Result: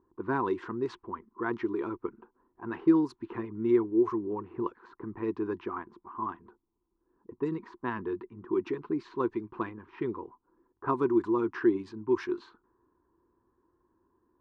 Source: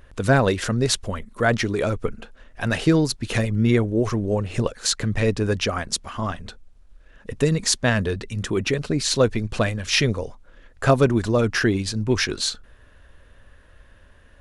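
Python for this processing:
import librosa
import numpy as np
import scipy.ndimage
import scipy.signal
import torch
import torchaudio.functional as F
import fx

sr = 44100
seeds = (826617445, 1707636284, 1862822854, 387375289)

y = fx.double_bandpass(x, sr, hz=590.0, octaves=1.5)
y = fx.env_lowpass(y, sr, base_hz=620.0, full_db=-26.0)
y = y * 10.0 ** (1.5 / 20.0)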